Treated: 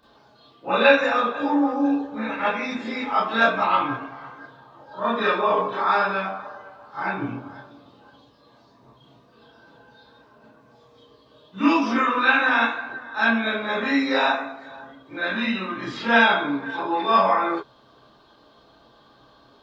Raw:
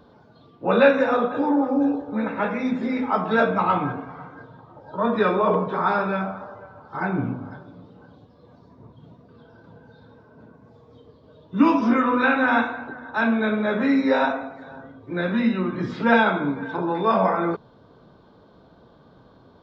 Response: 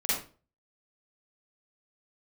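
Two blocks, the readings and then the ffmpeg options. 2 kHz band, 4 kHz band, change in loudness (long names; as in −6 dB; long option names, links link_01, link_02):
+4.0 dB, +8.0 dB, 0.0 dB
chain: -filter_complex "[0:a]tiltshelf=frequency=890:gain=-7.5[link_01];[1:a]atrim=start_sample=2205,afade=type=out:start_time=0.15:duration=0.01,atrim=end_sample=7056,asetrate=61740,aresample=44100[link_02];[link_01][link_02]afir=irnorm=-1:irlink=0,volume=-4dB"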